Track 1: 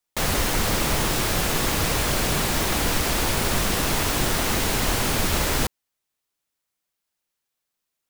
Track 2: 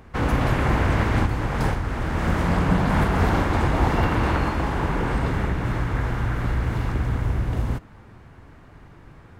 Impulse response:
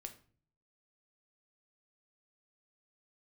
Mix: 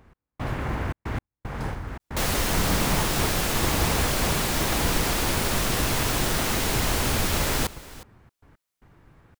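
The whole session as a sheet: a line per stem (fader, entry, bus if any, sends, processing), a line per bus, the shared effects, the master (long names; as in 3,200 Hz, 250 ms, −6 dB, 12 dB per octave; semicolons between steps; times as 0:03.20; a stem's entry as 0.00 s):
−2.0 dB, 2.00 s, no send, echo send −18.5 dB, no processing
−8.0 dB, 0.00 s, no send, no echo send, noise that follows the level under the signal 33 dB; gate pattern "x..xxxx." 114 BPM −60 dB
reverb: not used
echo: single-tap delay 362 ms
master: no processing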